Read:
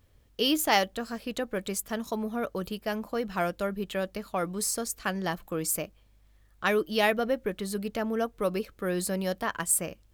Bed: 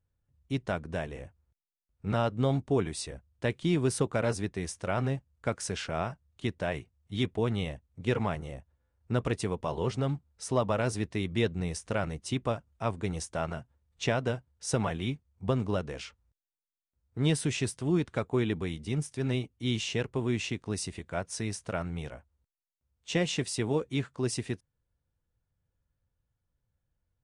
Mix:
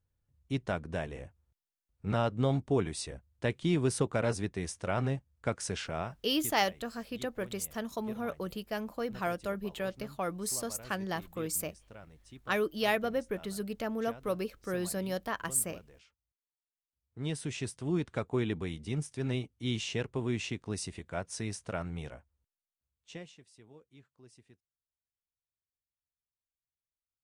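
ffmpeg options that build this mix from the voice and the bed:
ffmpeg -i stem1.wav -i stem2.wav -filter_complex "[0:a]adelay=5850,volume=-4.5dB[link_01];[1:a]volume=16dB,afade=type=out:start_time=5.75:duration=0.87:silence=0.112202,afade=type=in:start_time=16.64:duration=1.5:silence=0.133352,afade=type=out:start_time=22.12:duration=1.24:silence=0.0630957[link_02];[link_01][link_02]amix=inputs=2:normalize=0" out.wav

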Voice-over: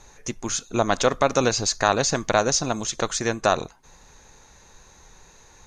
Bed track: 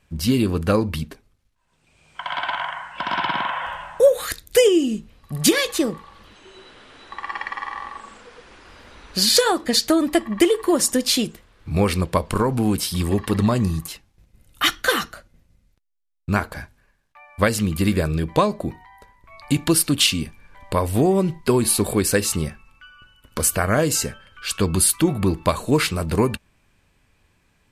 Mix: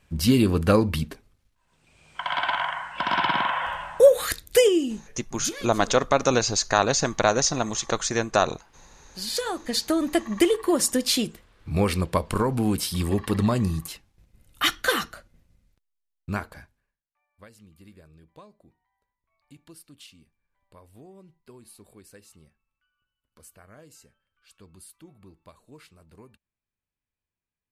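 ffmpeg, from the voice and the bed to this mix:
ffmpeg -i stem1.wav -i stem2.wav -filter_complex "[0:a]adelay=4900,volume=-0.5dB[link_01];[1:a]volume=14.5dB,afade=type=out:start_time=4.32:duration=0.94:silence=0.125893,afade=type=in:start_time=9.12:duration=1.15:silence=0.188365,afade=type=out:start_time=15.77:duration=1.26:silence=0.0421697[link_02];[link_01][link_02]amix=inputs=2:normalize=0" out.wav

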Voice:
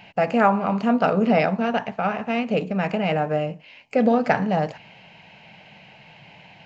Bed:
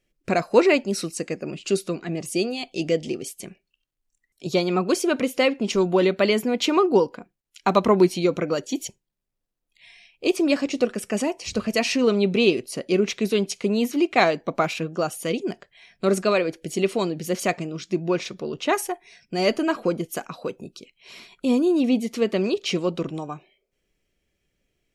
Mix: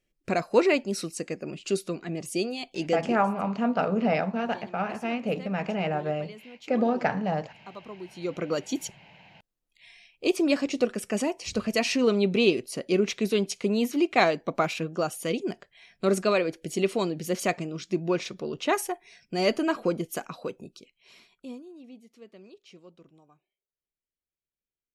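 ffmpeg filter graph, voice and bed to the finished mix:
ffmpeg -i stem1.wav -i stem2.wav -filter_complex "[0:a]adelay=2750,volume=-6dB[link_01];[1:a]volume=17dB,afade=type=out:start_time=3.04:duration=0.23:silence=0.1,afade=type=in:start_time=8.1:duration=0.48:silence=0.0841395,afade=type=out:start_time=20.28:duration=1.36:silence=0.0630957[link_02];[link_01][link_02]amix=inputs=2:normalize=0" out.wav

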